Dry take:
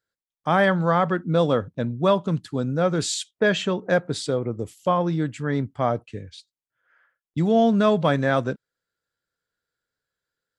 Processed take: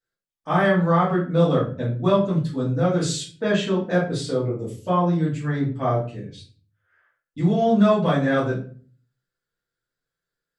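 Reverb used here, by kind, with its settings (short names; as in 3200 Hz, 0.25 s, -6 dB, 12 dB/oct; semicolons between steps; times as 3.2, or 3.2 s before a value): shoebox room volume 30 m³, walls mixed, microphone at 1.6 m; gain -10.5 dB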